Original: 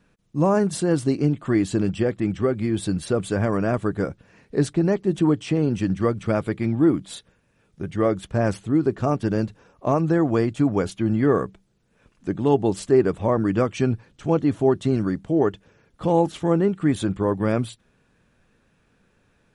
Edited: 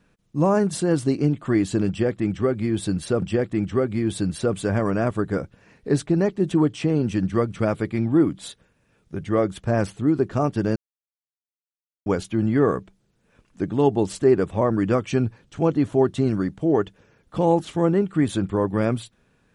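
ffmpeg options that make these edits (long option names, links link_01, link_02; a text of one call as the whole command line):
ffmpeg -i in.wav -filter_complex "[0:a]asplit=4[link_01][link_02][link_03][link_04];[link_01]atrim=end=3.222[link_05];[link_02]atrim=start=1.888:end=9.43,asetpts=PTS-STARTPTS,afade=type=out:start_time=7.538:duration=0.004:curve=hsin[link_06];[link_03]atrim=start=9.43:end=10.73,asetpts=PTS-STARTPTS,volume=0[link_07];[link_04]atrim=start=10.73,asetpts=PTS-STARTPTS,afade=type=in:duration=0.004:curve=hsin[link_08];[link_06][link_07][link_08]concat=n=3:v=0:a=1[link_09];[link_05][link_09]acrossfade=duration=0.004:curve1=hsin:curve2=hsin" out.wav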